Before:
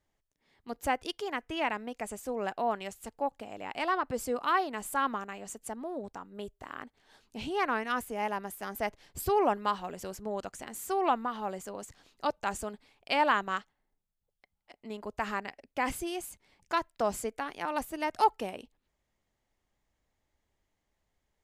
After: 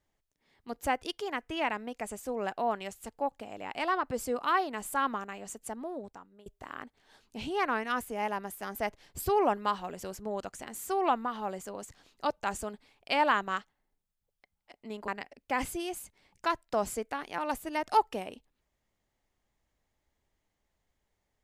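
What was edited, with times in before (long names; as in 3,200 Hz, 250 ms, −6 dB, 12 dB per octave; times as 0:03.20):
0:05.85–0:06.46: fade out, to −22 dB
0:15.08–0:15.35: remove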